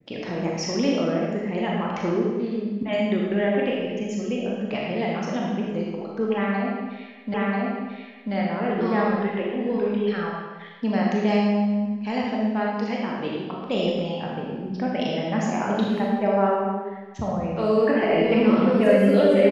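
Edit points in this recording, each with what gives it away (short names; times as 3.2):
7.34 repeat of the last 0.99 s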